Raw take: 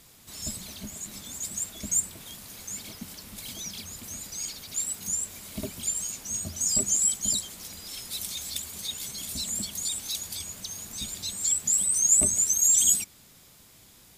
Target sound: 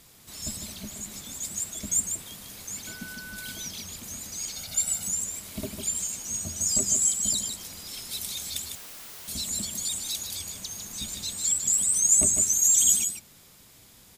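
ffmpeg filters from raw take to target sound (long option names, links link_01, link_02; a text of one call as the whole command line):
ffmpeg -i in.wav -filter_complex "[0:a]asettb=1/sr,asplit=3[link_01][link_02][link_03];[link_01]atrim=end=2.874[link_04];[link_02]atrim=start=2.87:end=3.52,asetpts=PTS-STARTPTS,afade=type=in:duration=0.004:curve=qsin,afade=type=out:start_time=0.646:duration=0.004:curve=qsin,aeval=exprs='val(0)+0.00708*sin(2*PI*1500*n/s)':channel_layout=same[link_05];[link_03]atrim=start=3.516[link_06];[link_04][link_05]acrossfade=duration=0.004:curve1=hsin:curve2=qsin[link_07];[link_07][link_06]acrossfade=duration=0.004:curve1=qsin:curve2=hsin,asettb=1/sr,asplit=3[link_08][link_09][link_10];[link_08]atrim=end=4.564[link_11];[link_09]atrim=start=4.56:end=5.03,asetpts=PTS-STARTPTS,afade=type=in:duration=0.004:curve=qsin,afade=type=out:start_time=0.466:duration=0.004:curve=qsin,aecho=1:1:1.4:0.89,atrim=end_sample=20727[link_12];[link_10]atrim=start=5.026[link_13];[link_11][link_12]acrossfade=duration=0.004:curve1=hsin:curve2=qsin[link_14];[link_14][link_13]acrossfade=duration=0.004:curve1=qsin:curve2=hsin,asplit=2[link_15][link_16];[link_16]aecho=0:1:152:0.447[link_17];[link_15][link_17]amix=inputs=2:normalize=0,asettb=1/sr,asplit=3[link_18][link_19][link_20];[link_18]atrim=end=8.754[link_21];[link_19]atrim=start=8.75:end=9.28,asetpts=PTS-STARTPTS,afade=type=in:duration=0.004:curve=qsin,afade=type=out:start_time=0.526:duration=0.004:curve=qsin,aeval=exprs='(mod(84.1*val(0)+1,2)-1)/84.1':channel_layout=same[link_22];[link_20]atrim=start=9.276[link_23];[link_21][link_22]acrossfade=duration=0.004:curve1=hsin:curve2=qsin[link_24];[link_24][link_23]acrossfade=duration=0.004:curve1=qsin:curve2=hsin" out.wav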